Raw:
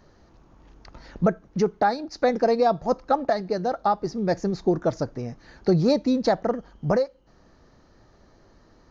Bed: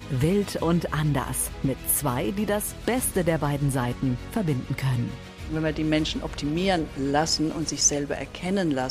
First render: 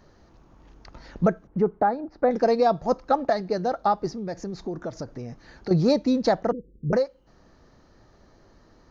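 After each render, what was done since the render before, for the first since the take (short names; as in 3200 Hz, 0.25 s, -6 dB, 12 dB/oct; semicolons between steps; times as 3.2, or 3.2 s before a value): 1.47–2.31 LPF 1300 Hz; 4.14–5.71 compressor 2.5:1, threshold -32 dBFS; 6.52–6.93 rippled Chebyshev low-pass 510 Hz, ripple 3 dB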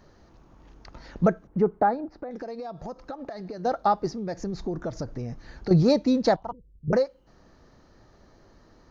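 2.05–3.65 compressor 20:1, threshold -32 dBFS; 4.4–5.83 low shelf 98 Hz +10.5 dB; 6.36–6.88 EQ curve 100 Hz 0 dB, 210 Hz -16 dB, 490 Hz -19 dB, 960 Hz +3 dB, 1800 Hz -23 dB, 3100 Hz -5 dB, 6400 Hz -15 dB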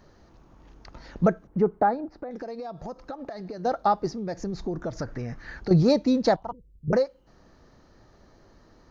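4.98–5.6 bell 1700 Hz +11.5 dB 1.1 oct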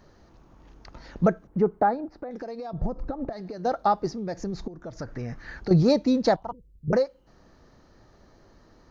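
2.73–3.33 tilt -4 dB/oct; 4.68–5.25 fade in, from -14.5 dB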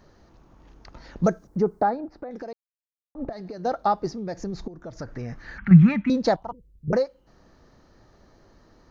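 1.24–1.9 resonant high shelf 3900 Hz +10 dB, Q 1.5; 2.53–3.15 mute; 5.58–6.1 EQ curve 120 Hz 0 dB, 190 Hz +12 dB, 440 Hz -23 dB, 760 Hz -9 dB, 1100 Hz +5 dB, 1500 Hz +12 dB, 2200 Hz +14 dB, 3200 Hz +3 dB, 4600 Hz -27 dB, 7200 Hz -15 dB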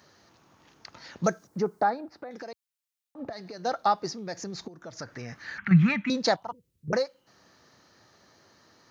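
HPF 89 Hz 24 dB/oct; tilt shelf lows -7 dB, about 1100 Hz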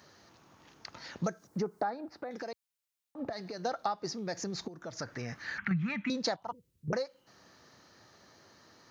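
compressor 5:1, threshold -30 dBFS, peak gain reduction 15 dB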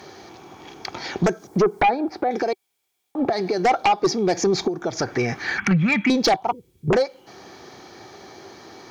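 small resonant body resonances 380/760/2300/3300 Hz, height 12 dB, ringing for 30 ms; sine folder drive 9 dB, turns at -12.5 dBFS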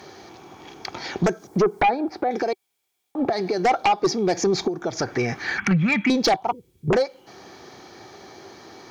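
gain -1 dB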